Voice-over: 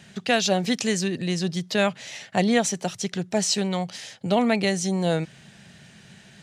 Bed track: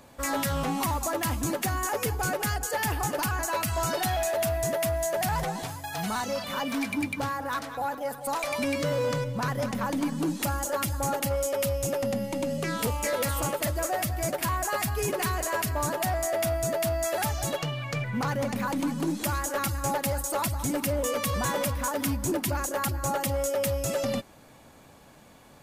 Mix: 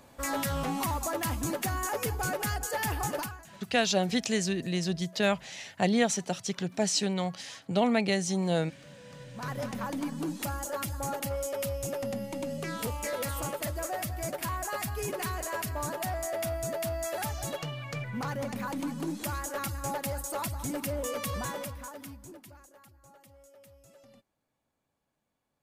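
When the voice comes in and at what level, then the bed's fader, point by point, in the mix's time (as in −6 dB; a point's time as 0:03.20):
3.45 s, −4.5 dB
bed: 0:03.18 −3 dB
0:03.49 −26 dB
0:09.04 −26 dB
0:09.51 −5.5 dB
0:21.36 −5.5 dB
0:22.86 −29 dB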